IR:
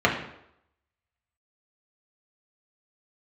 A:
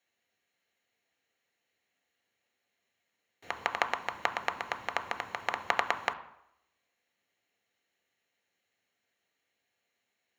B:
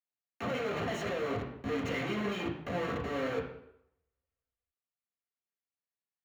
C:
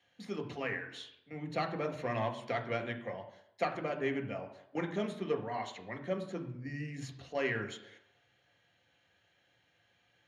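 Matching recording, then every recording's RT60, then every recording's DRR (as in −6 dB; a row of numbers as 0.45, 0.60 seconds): B; 0.75, 0.75, 0.75 seconds; 9.0, −3.0, 3.5 decibels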